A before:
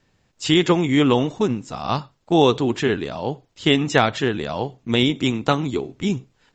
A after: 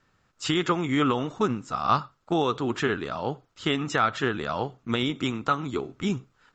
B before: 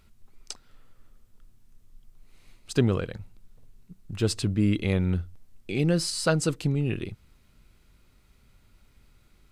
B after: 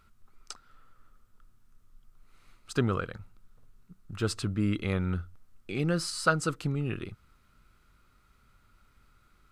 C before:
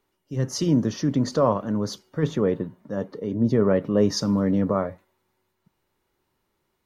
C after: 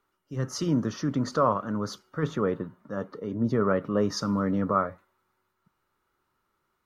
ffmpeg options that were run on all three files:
ffmpeg -i in.wav -af "alimiter=limit=-9.5dB:level=0:latency=1:release=295,equalizer=frequency=1300:width_type=o:width=0.55:gain=13.5,volume=-5dB" out.wav

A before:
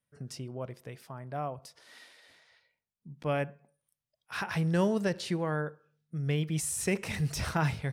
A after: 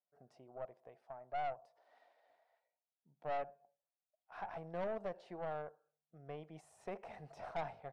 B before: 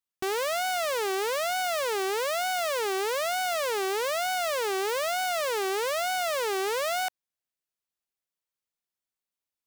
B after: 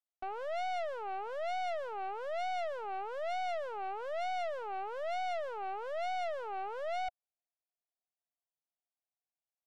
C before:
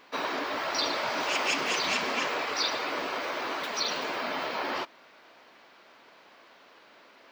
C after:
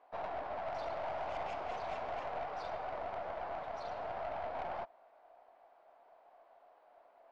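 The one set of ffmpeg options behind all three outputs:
ffmpeg -i in.wav -af "bandpass=frequency=710:width_type=q:width=6:csg=0,aeval=exprs='(tanh(89.1*val(0)+0.45)-tanh(0.45))/89.1':channel_layout=same,volume=4.5dB" out.wav

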